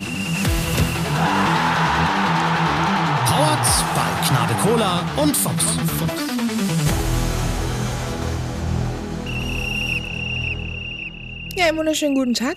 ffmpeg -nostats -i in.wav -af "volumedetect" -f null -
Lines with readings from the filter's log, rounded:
mean_volume: -20.2 dB
max_volume: -4.4 dB